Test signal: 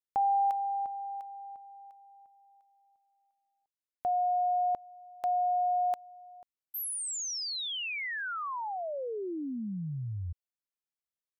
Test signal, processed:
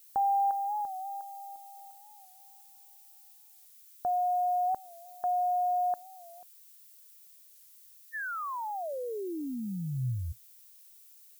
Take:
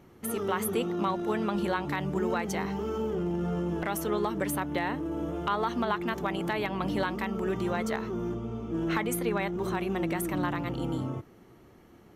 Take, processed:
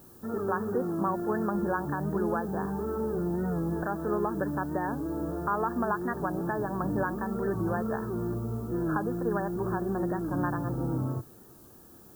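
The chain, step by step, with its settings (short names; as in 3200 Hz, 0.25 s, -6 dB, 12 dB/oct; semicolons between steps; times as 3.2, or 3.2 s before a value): brick-wall FIR low-pass 1800 Hz; dynamic EQ 120 Hz, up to +6 dB, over -53 dBFS, Q 3.7; added noise violet -56 dBFS; record warp 45 rpm, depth 100 cents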